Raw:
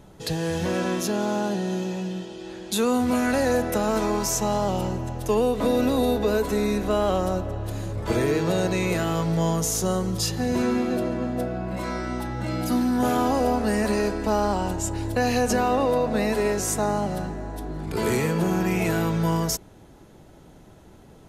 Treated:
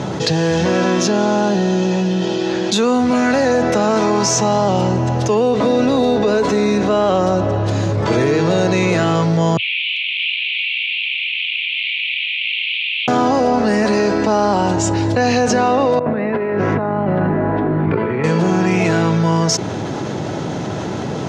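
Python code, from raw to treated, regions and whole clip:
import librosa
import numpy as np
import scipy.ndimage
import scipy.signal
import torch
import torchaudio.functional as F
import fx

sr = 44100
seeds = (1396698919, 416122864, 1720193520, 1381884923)

y = fx.chain(x, sr, fx.delta_mod(bps=16000, step_db=-26.0),
    fx.steep_highpass(hz=2300.0, slope=96),
    fx.echo_single(ms=396, db=-23.0), at=(9.57, 13.08))
y = fx.chain(y, sr, fx.lowpass(hz=2300.0, slope=24),
    fx.over_compress(threshold_db=-29.0, ratio=-0.5),
    fx.peak_eq(hz=750.0, db=-5.5, octaves=0.2), at=(15.99, 18.24))
y = scipy.signal.sosfilt(scipy.signal.cheby1(3, 1.0, [110.0, 6100.0], 'bandpass', fs=sr, output='sos'), y)
y = fx.env_flatten(y, sr, amount_pct=70)
y = y * librosa.db_to_amplitude(6.0)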